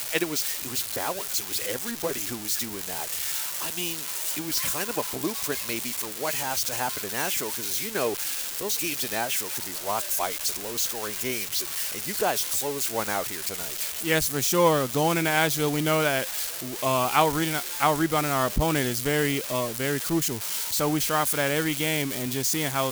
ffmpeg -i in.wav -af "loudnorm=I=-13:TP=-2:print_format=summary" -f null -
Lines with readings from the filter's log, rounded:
Input Integrated:    -25.6 LUFS
Input True Peak:      -7.1 dBTP
Input LRA:             3.6 LU
Input Threshold:     -35.6 LUFS